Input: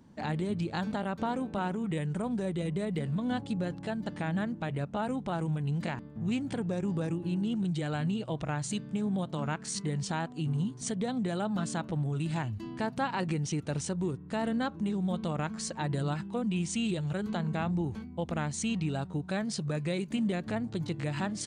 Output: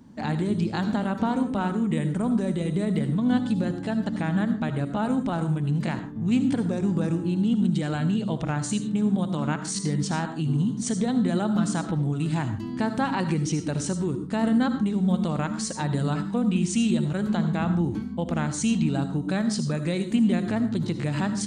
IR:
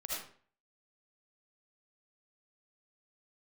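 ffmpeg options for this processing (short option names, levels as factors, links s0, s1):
-filter_complex "[0:a]asplit=2[s0][s1];[s1]equalizer=f=250:t=o:w=0.67:g=12,equalizer=f=630:t=o:w=0.67:g=-10,equalizer=f=2500:t=o:w=0.67:g=-11[s2];[1:a]atrim=start_sample=2205,afade=t=out:st=0.22:d=0.01,atrim=end_sample=10143[s3];[s2][s3]afir=irnorm=-1:irlink=0,volume=0.668[s4];[s0][s4]amix=inputs=2:normalize=0,volume=1.33"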